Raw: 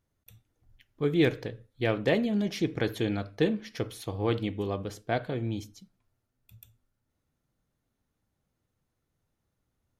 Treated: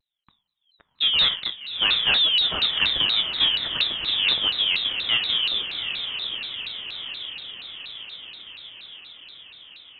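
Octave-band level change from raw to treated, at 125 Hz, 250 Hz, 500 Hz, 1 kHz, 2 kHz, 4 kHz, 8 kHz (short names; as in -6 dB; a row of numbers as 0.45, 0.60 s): -13.5 dB, -15.5 dB, -13.0 dB, +3.0 dB, +11.0 dB, +25.0 dB, under -15 dB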